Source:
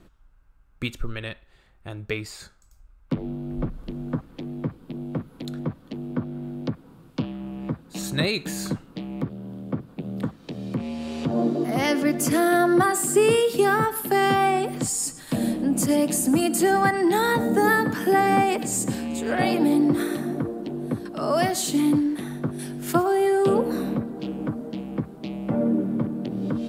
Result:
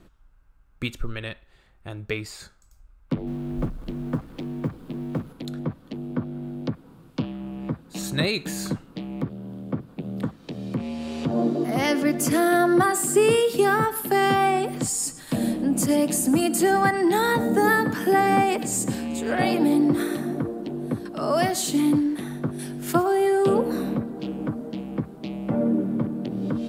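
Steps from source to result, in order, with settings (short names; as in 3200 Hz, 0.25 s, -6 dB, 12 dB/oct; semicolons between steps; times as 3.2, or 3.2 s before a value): 3.27–5.33 G.711 law mismatch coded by mu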